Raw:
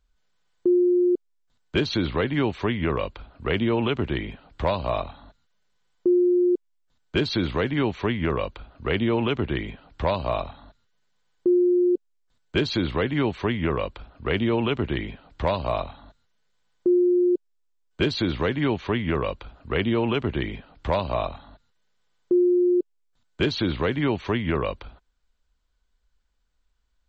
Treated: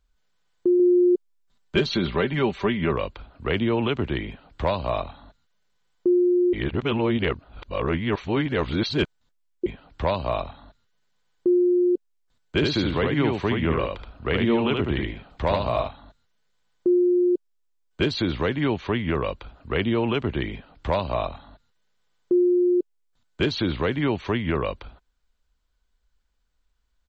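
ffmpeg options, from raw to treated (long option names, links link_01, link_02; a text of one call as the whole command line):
ffmpeg -i in.wav -filter_complex "[0:a]asettb=1/sr,asplit=3[link_01][link_02][link_03];[link_01]atrim=end=0.794[link_04];[link_02]atrim=start=0.79:end=2.93,asetpts=PTS-STARTPTS,afade=type=in:duration=0.004:curve=qsin,afade=type=out:start_time=2.136:duration=0.004:curve=qsin,aecho=1:1:5.1:0.55,atrim=end_sample=94374[link_05];[link_03]atrim=start=2.926[link_06];[link_04][link_05]acrossfade=duration=0.004:curve1=hsin:curve2=qsin[link_07];[link_07][link_06]acrossfade=duration=0.004:curve1=qsin:curve2=hsin,asplit=3[link_08][link_09][link_10];[link_08]afade=type=out:start_time=12.59:duration=0.02[link_11];[link_09]aecho=1:1:74:0.668,afade=type=in:start_time=12.59:duration=0.02,afade=type=out:start_time=15.87:duration=0.02[link_12];[link_10]afade=type=in:start_time=15.87:duration=0.02[link_13];[link_11][link_12][link_13]amix=inputs=3:normalize=0,asplit=3[link_14][link_15][link_16];[link_14]atrim=end=6.532[link_17];[link_15]atrim=start=6.528:end=9.662,asetpts=PTS-STARTPTS,areverse[link_18];[link_16]atrim=start=9.658[link_19];[link_17][link_18]acrossfade=duration=0.004:curve1=hsin:curve2=hsin[link_20];[link_20][link_19]acrossfade=duration=0.004:curve1=hsin:curve2=hsin" out.wav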